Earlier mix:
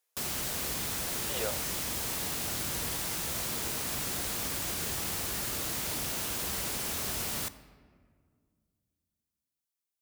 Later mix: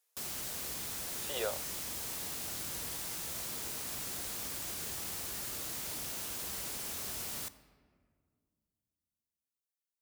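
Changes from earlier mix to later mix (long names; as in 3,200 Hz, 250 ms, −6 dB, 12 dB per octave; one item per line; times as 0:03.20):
background −8.0 dB
master: add bass and treble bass −2 dB, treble +3 dB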